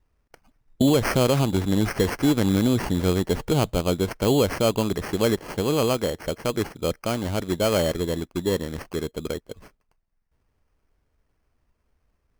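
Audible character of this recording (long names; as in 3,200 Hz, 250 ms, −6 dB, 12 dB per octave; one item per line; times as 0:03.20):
aliases and images of a low sample rate 3,700 Hz, jitter 0%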